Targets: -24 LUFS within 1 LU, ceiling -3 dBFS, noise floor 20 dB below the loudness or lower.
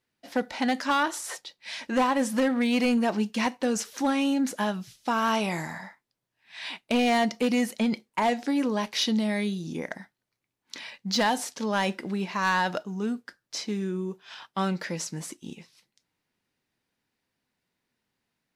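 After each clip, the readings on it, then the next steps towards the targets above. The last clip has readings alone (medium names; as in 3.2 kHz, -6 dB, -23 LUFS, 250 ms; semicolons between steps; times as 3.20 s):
clipped samples 0.8%; clipping level -18.0 dBFS; loudness -27.5 LUFS; peak level -18.0 dBFS; loudness target -24.0 LUFS
-> clip repair -18 dBFS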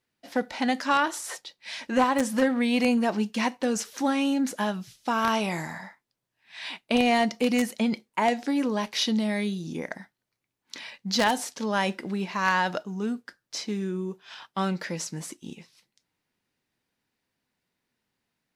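clipped samples 0.0%; loudness -27.0 LUFS; peak level -9.0 dBFS; loudness target -24.0 LUFS
-> trim +3 dB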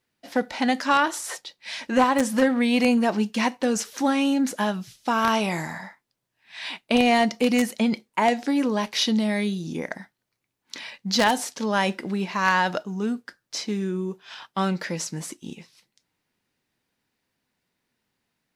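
loudness -24.0 LUFS; peak level -6.0 dBFS; noise floor -80 dBFS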